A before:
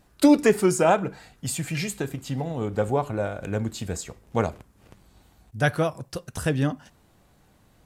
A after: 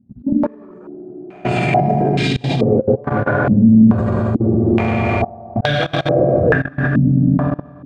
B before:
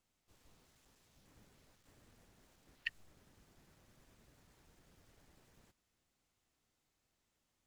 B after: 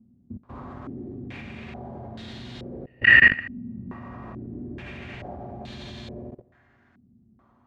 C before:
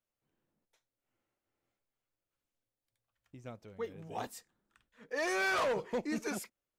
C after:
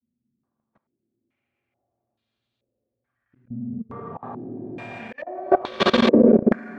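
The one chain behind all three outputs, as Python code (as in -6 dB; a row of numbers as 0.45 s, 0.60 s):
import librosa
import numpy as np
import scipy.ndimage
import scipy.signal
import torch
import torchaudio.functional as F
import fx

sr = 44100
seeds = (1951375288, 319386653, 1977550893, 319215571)

y = fx.reverse_delay(x, sr, ms=197, wet_db=-10.5)
y = scipy.signal.sosfilt(scipy.signal.butter(2, 90.0, 'highpass', fs=sr, output='sos'), y)
y = fx.echo_heads(y, sr, ms=121, heads='all three', feedback_pct=54, wet_db=-15.0)
y = fx.rev_fdn(y, sr, rt60_s=2.0, lf_ratio=1.25, hf_ratio=0.9, size_ms=25.0, drr_db=-9.0)
y = fx.auto_swell(y, sr, attack_ms=306.0)
y = fx.quant_float(y, sr, bits=2)
y = fx.over_compress(y, sr, threshold_db=-23.0, ratio=-1.0)
y = fx.low_shelf(y, sr, hz=210.0, db=8.0)
y = fx.level_steps(y, sr, step_db=22)
y = fx.filter_held_lowpass(y, sr, hz=2.3, low_hz=220.0, high_hz=3700.0)
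y = librosa.util.normalize(y) * 10.0 ** (-1.5 / 20.0)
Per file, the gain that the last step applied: +5.0 dB, +26.5 dB, +6.5 dB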